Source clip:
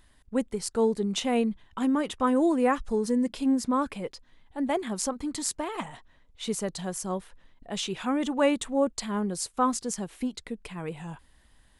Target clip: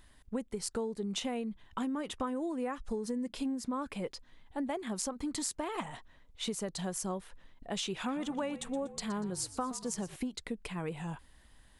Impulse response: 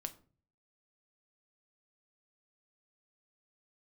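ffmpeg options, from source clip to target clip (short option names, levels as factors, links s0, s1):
-filter_complex "[0:a]acompressor=threshold=0.0251:ratio=12,asettb=1/sr,asplit=3[s0][s1][s2];[s0]atrim=end=7.964[s3];[s1]atrim=start=7.96:end=10.16,asetpts=PTS-STARTPTS,afade=t=in:d=0.004:c=qsin,afade=t=out:st=2.196:d=0.004:c=qsin,asplit=5[s4][s5][s6][s7][s8];[s5]adelay=120,afreqshift=-50,volume=0.178[s9];[s6]adelay=240,afreqshift=-100,volume=0.0822[s10];[s7]adelay=360,afreqshift=-150,volume=0.0376[s11];[s8]adelay=480,afreqshift=-200,volume=0.0174[s12];[s4][s9][s10][s11][s12]amix=inputs=5:normalize=0,atrim=end_sample=97020[s13];[s2]atrim=start=10.156[s14];[s3][s13]acrossfade=d=0.004:c1=hsin:c2=qsin[s15];[s15][s14]acrossfade=d=0.004:c1=qsin:c2=hsin"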